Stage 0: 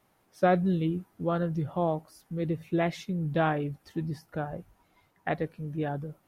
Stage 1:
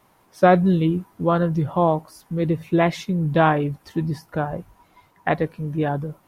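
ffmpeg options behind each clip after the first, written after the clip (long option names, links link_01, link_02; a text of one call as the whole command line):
ffmpeg -i in.wav -af "equalizer=frequency=1000:width=5.5:gain=7.5,volume=8.5dB" out.wav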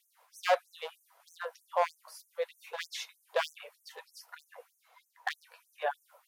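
ffmpeg -i in.wav -af "volume=14dB,asoftclip=hard,volume=-14dB,afftfilt=real='re*gte(b*sr/1024,430*pow(6000/430,0.5+0.5*sin(2*PI*3.2*pts/sr)))':imag='im*gte(b*sr/1024,430*pow(6000/430,0.5+0.5*sin(2*PI*3.2*pts/sr)))':win_size=1024:overlap=0.75,volume=-4dB" out.wav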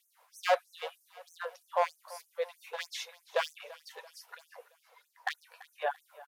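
ffmpeg -i in.wav -af "aecho=1:1:337|674|1011|1348:0.106|0.0508|0.0244|0.0117" out.wav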